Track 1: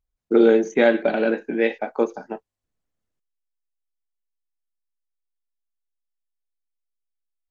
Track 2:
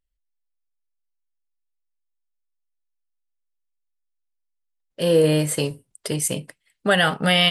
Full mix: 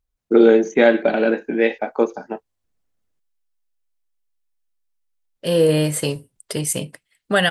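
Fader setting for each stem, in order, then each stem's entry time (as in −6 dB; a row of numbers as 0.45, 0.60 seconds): +3.0, +1.0 decibels; 0.00, 0.45 seconds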